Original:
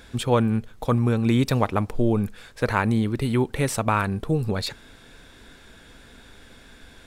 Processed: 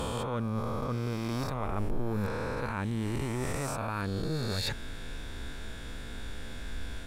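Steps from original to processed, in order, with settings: reverse spectral sustain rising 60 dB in 2.30 s; reverse; compression 12:1, threshold -31 dBFS, peak gain reduction 19.5 dB; reverse; bass shelf 110 Hz +9.5 dB

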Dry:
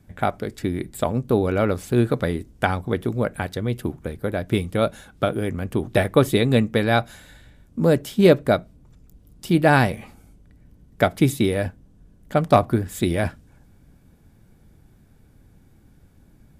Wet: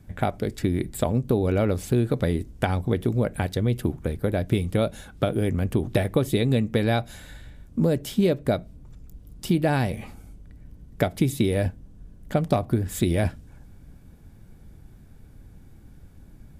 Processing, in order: bass shelf 92 Hz +7 dB; compression 6:1, threshold -19 dBFS, peak gain reduction 11 dB; dynamic bell 1.3 kHz, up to -6 dB, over -42 dBFS, Q 1.3; trim +1.5 dB

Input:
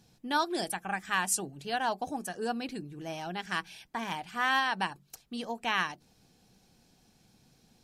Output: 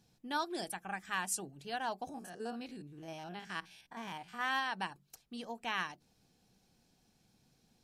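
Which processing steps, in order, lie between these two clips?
2.09–4.41 s: spectrogram pixelated in time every 50 ms; trim -7 dB

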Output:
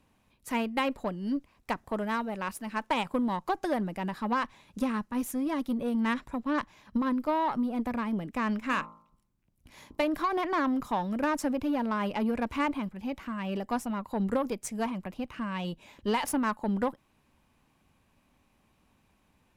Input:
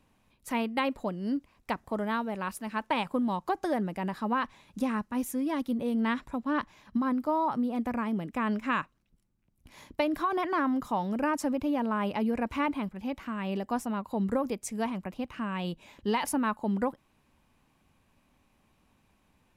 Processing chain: 8.65–10.05 s: de-hum 55.06 Hz, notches 25; Chebyshev shaper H 8 -26 dB, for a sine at -15 dBFS

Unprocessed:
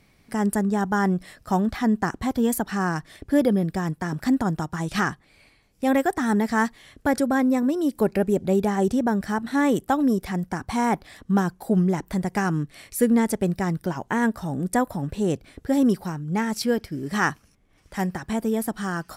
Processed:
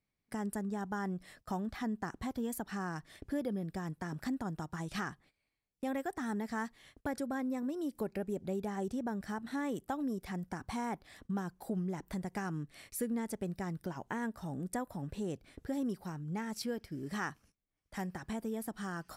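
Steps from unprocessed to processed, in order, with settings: gate -47 dBFS, range -20 dB; compression 2:1, threshold -30 dBFS, peak gain reduction 9 dB; trim -8.5 dB

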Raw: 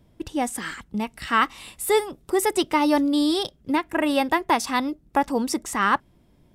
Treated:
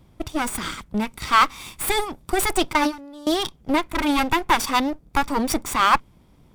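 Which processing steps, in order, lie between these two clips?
comb filter that takes the minimum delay 0.87 ms; 2.73–3.27 s: gate with hold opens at -14 dBFS; trim +5 dB

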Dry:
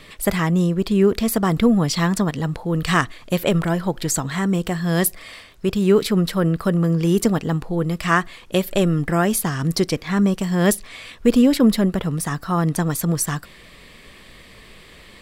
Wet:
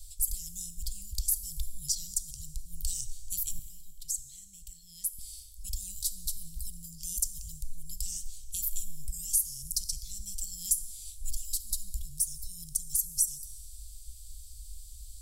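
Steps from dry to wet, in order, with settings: inverse Chebyshev band-stop 240–1700 Hz, stop band 70 dB; 3.59–5.19 s: three-band isolator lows -13 dB, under 230 Hz, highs -14 dB, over 2.8 kHz; compression 2:1, threshold -37 dBFS, peak gain reduction 10 dB; plate-style reverb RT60 1.9 s, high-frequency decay 0.85×, DRR 11.5 dB; trim +6.5 dB

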